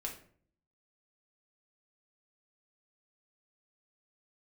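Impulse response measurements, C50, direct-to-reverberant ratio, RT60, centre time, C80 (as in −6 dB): 8.5 dB, −1.5 dB, 0.50 s, 19 ms, 13.0 dB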